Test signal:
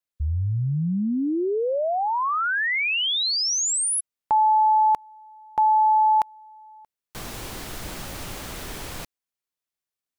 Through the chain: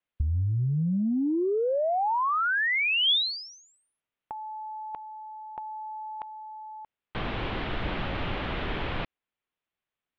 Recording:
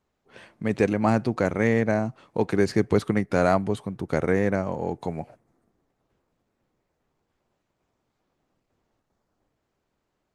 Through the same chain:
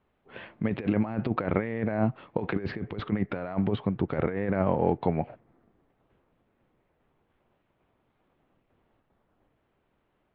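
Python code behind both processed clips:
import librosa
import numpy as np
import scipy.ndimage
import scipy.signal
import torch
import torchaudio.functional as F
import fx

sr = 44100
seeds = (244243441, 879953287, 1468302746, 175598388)

y = scipy.signal.sosfilt(scipy.signal.butter(6, 3400.0, 'lowpass', fs=sr, output='sos'), x)
y = fx.over_compress(y, sr, threshold_db=-26.0, ratio=-0.5)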